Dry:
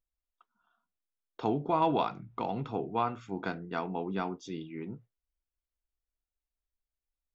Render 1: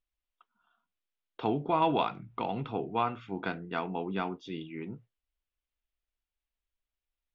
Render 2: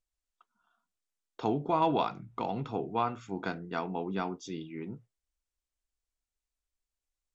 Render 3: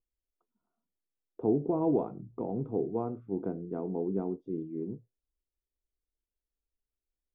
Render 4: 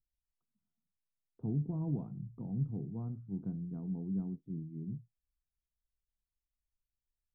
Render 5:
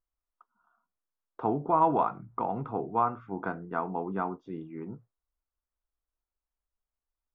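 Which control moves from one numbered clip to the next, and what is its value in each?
synth low-pass, frequency: 3100, 7900, 420, 160, 1200 Hz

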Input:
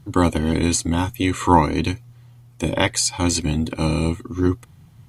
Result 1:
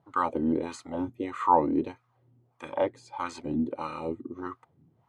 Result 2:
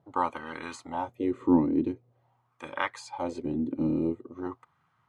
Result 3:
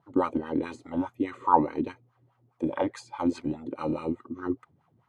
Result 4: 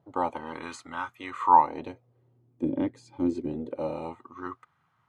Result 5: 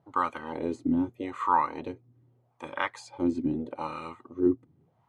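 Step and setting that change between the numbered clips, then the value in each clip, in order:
wah, rate: 1.6, 0.46, 4.8, 0.26, 0.81 Hz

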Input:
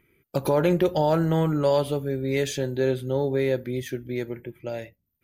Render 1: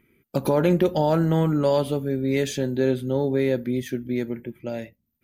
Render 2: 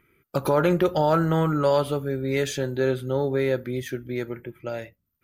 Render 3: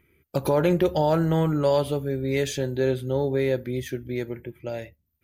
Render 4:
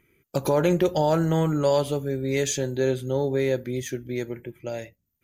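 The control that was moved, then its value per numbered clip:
bell, frequency: 230, 1300, 74, 6700 Hz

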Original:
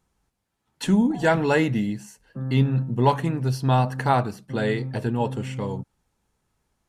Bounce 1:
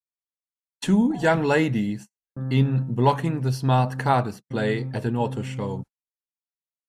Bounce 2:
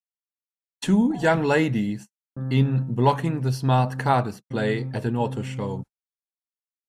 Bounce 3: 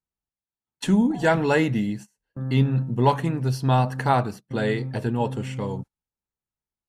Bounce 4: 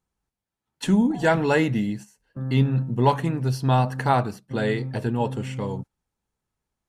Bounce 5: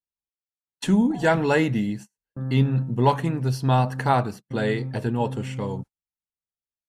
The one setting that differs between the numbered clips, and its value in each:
gate, range: -47, -59, -23, -10, -35 dB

